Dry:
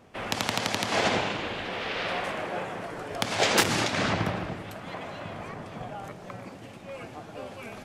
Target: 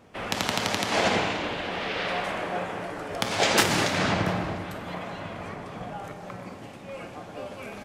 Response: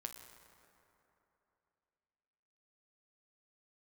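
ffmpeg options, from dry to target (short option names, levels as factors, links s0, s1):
-filter_complex "[0:a]asplit=2[s0][s1];[s1]adelay=699.7,volume=0.158,highshelf=f=4000:g=-15.7[s2];[s0][s2]amix=inputs=2:normalize=0[s3];[1:a]atrim=start_sample=2205,afade=t=out:st=0.42:d=0.01,atrim=end_sample=18963[s4];[s3][s4]afir=irnorm=-1:irlink=0,volume=1.78"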